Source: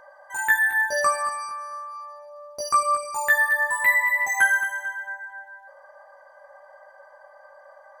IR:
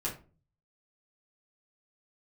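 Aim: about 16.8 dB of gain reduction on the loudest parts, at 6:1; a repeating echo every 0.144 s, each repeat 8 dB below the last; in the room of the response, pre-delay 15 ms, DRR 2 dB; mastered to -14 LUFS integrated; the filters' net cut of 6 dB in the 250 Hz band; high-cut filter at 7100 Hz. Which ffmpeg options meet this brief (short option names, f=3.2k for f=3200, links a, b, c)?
-filter_complex "[0:a]lowpass=7.1k,equalizer=f=250:t=o:g=-8.5,acompressor=threshold=-34dB:ratio=6,aecho=1:1:144|288|432|576|720:0.398|0.159|0.0637|0.0255|0.0102,asplit=2[a][b];[1:a]atrim=start_sample=2205,adelay=15[c];[b][c]afir=irnorm=-1:irlink=0,volume=-5.5dB[d];[a][d]amix=inputs=2:normalize=0,volume=16.5dB"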